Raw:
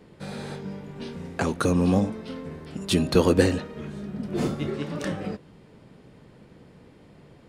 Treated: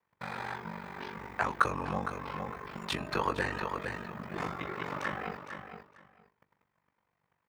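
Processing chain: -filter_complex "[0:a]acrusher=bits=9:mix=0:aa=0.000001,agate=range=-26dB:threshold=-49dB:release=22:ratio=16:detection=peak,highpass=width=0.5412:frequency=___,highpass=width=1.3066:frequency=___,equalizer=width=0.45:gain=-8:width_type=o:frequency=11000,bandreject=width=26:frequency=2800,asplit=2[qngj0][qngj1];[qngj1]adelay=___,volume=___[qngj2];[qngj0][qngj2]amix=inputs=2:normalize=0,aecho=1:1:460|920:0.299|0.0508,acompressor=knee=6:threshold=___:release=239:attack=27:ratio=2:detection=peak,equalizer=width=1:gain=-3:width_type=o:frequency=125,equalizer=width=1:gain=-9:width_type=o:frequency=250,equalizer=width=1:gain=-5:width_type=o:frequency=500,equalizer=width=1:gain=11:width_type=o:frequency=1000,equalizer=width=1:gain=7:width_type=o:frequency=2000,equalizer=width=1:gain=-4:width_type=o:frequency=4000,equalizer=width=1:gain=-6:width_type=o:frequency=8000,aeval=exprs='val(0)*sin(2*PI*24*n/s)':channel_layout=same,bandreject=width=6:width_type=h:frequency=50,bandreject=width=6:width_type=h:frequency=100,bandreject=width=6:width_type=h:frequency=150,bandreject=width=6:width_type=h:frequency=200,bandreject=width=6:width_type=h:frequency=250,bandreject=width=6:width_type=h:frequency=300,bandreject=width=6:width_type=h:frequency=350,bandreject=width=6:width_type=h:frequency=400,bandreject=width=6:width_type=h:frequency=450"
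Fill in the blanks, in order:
70, 70, 16, -11dB, -30dB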